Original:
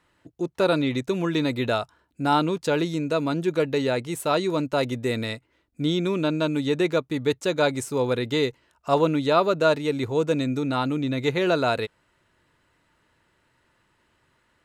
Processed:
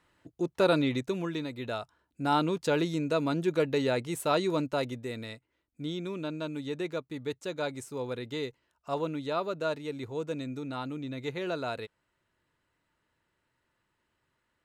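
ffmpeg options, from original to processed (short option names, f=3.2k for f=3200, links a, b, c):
-af "volume=6.5dB,afade=t=out:st=0.79:d=0.72:silence=0.298538,afade=t=in:st=1.51:d=1.07:silence=0.334965,afade=t=out:st=4.54:d=0.53:silence=0.421697"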